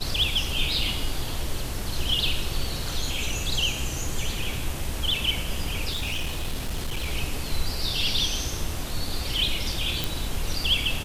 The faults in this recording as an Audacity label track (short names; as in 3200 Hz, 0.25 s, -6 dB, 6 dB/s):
5.900000	7.070000	clipped -24 dBFS
10.040000	10.040000	pop